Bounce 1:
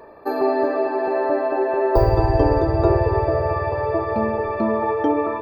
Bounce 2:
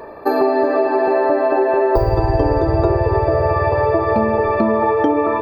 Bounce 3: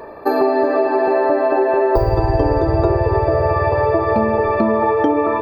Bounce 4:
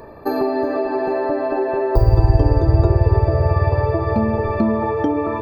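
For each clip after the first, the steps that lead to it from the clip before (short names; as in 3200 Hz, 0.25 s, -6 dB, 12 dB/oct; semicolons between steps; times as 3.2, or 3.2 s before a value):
compressor, threshold -21 dBFS, peak gain reduction 10.5 dB; gain +9 dB
nothing audible
tone controls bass +12 dB, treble +7 dB; gain -6 dB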